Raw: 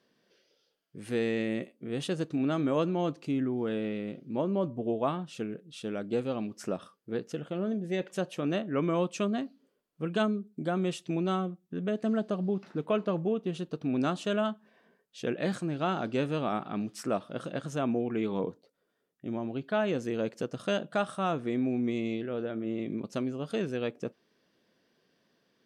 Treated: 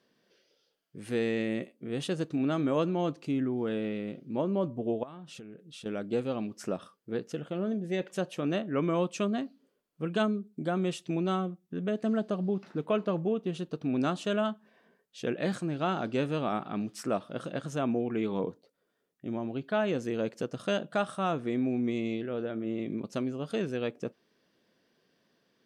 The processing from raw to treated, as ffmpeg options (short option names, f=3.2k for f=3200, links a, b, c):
-filter_complex "[0:a]asettb=1/sr,asplit=3[a][b][c];[a]atrim=end=5.034[d];[b]atrim=start=5.03:end=5.86,asetpts=PTS-STARTPTS,afade=t=in:d=0.004:c=qsin,afade=t=out:st=0.826:d=0.004:c=qsin,acompressor=threshold=-42dB:ratio=10:attack=3.2:release=140:knee=1:detection=peak[e];[c]atrim=start=5.856[f];[d][e]acrossfade=d=0.004:c1=hsin:c2=qsin[g];[g][f]acrossfade=d=0.004:c1=qsin:c2=hsin"